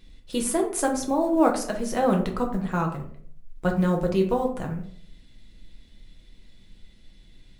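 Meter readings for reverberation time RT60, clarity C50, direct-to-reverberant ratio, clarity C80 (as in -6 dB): 0.60 s, 9.0 dB, 1.0 dB, 12.5 dB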